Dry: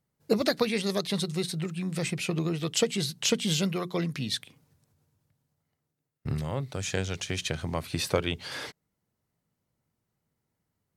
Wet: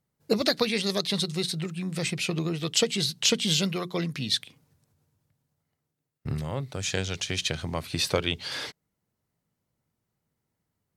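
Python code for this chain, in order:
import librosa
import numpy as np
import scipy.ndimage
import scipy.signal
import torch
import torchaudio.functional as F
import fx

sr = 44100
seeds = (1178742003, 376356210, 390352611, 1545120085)

y = fx.dynamic_eq(x, sr, hz=4100.0, q=0.87, threshold_db=-45.0, ratio=4.0, max_db=6)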